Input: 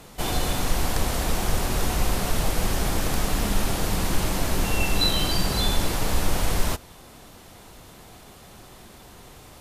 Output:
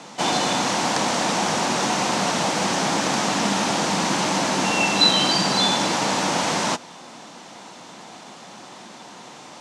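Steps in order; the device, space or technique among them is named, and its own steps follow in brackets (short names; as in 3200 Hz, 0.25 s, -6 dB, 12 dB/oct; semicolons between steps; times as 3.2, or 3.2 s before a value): television speaker (speaker cabinet 180–7600 Hz, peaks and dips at 410 Hz -6 dB, 900 Hz +5 dB, 6000 Hz +3 dB); gain +7 dB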